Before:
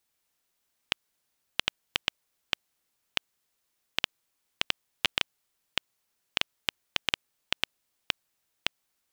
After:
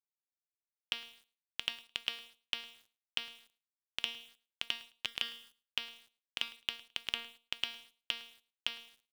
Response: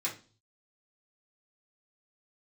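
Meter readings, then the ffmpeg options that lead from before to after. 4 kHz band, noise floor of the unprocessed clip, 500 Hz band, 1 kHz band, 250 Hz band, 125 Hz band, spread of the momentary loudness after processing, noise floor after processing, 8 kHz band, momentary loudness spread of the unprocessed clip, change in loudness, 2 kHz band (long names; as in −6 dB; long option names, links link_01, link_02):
−5.0 dB, −78 dBFS, −11.5 dB, −11.0 dB, −11.5 dB, −13.0 dB, 13 LU, below −85 dBFS, −8.5 dB, 5 LU, −6.5 dB, −7.5 dB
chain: -af "highshelf=frequency=3600:gain=5,bandreject=frequency=233:width_type=h:width=4,bandreject=frequency=466:width_type=h:width=4,bandreject=frequency=699:width_type=h:width=4,bandreject=frequency=932:width_type=h:width=4,bandreject=frequency=1165:width_type=h:width=4,bandreject=frequency=1398:width_type=h:width=4,bandreject=frequency=1631:width_type=h:width=4,bandreject=frequency=1864:width_type=h:width=4,bandreject=frequency=2097:width_type=h:width=4,bandreject=frequency=2330:width_type=h:width=4,bandreject=frequency=2563:width_type=h:width=4,bandreject=frequency=2796:width_type=h:width=4,bandreject=frequency=3029:width_type=h:width=4,bandreject=frequency=3262:width_type=h:width=4,bandreject=frequency=3495:width_type=h:width=4,bandreject=frequency=3728:width_type=h:width=4,bandreject=frequency=3961:width_type=h:width=4,bandreject=frequency=4194:width_type=h:width=4,bandreject=frequency=4427:width_type=h:width=4,bandreject=frequency=4660:width_type=h:width=4,bandreject=frequency=4893:width_type=h:width=4,bandreject=frequency=5126:width_type=h:width=4,bandreject=frequency=5359:width_type=h:width=4,bandreject=frequency=5592:width_type=h:width=4,bandreject=frequency=5825:width_type=h:width=4,areverse,acompressor=threshold=-35dB:ratio=12,areverse,acrusher=bits=9:mix=0:aa=0.000001,aecho=1:1:107|214:0.0891|0.0152,volume=3dB"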